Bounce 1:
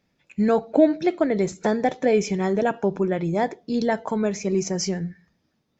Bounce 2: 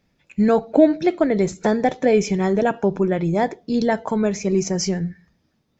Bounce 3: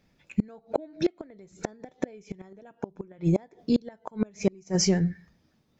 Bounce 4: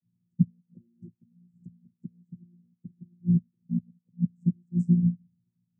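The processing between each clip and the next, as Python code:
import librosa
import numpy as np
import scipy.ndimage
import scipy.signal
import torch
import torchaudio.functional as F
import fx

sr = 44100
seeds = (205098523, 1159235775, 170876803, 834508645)

y1 = fx.low_shelf(x, sr, hz=94.0, db=7.5)
y1 = y1 * 10.0 ** (2.5 / 20.0)
y2 = fx.gate_flip(y1, sr, shuts_db=-12.0, range_db=-31)
y3 = fx.chord_vocoder(y2, sr, chord='bare fifth', root=46)
y3 = scipy.signal.sosfilt(scipy.signal.cheby2(4, 60, [630.0, 4000.0], 'bandstop', fs=sr, output='sos'), y3)
y3 = fx.upward_expand(y3, sr, threshold_db=-38.0, expansion=1.5)
y3 = y3 * 10.0 ** (4.0 / 20.0)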